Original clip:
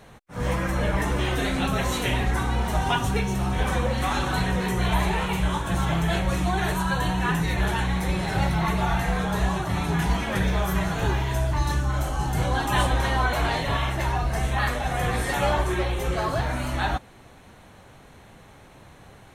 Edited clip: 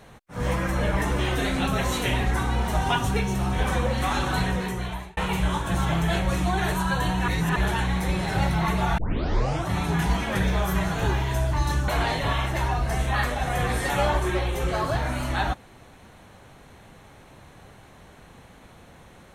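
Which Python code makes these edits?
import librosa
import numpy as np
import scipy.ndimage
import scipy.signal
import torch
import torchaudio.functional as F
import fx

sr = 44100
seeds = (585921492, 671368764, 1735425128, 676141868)

y = fx.edit(x, sr, fx.fade_out_span(start_s=4.44, length_s=0.73),
    fx.reverse_span(start_s=7.28, length_s=0.28),
    fx.tape_start(start_s=8.98, length_s=0.7),
    fx.cut(start_s=11.88, length_s=1.44), tone=tone)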